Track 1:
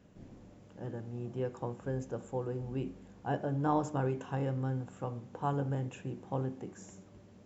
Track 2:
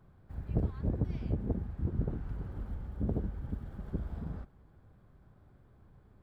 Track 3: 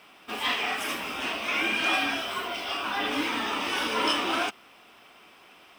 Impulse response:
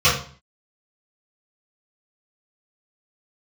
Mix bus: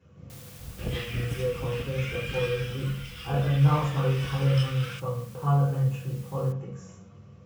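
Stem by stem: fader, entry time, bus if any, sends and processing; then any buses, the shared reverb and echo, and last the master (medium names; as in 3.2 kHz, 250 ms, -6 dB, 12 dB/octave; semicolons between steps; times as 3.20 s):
-7.5 dB, 0.00 s, send -11.5 dB, peaking EQ 1.1 kHz +3 dB 0.77 oct
+0.5 dB, 0.30 s, no send, word length cut 8-bit, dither triangular; auto duck -7 dB, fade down 1.85 s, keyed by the first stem
-10.0 dB, 0.50 s, no send, steep high-pass 1.3 kHz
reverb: on, RT60 0.45 s, pre-delay 3 ms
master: none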